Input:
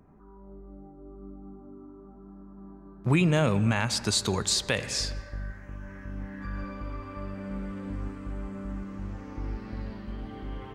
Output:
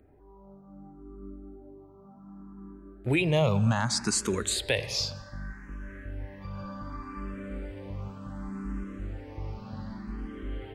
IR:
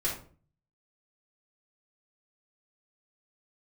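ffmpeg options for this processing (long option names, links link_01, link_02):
-filter_complex "[0:a]asplit=2[link_01][link_02];[link_02]afreqshift=0.66[link_03];[link_01][link_03]amix=inputs=2:normalize=1,volume=2dB"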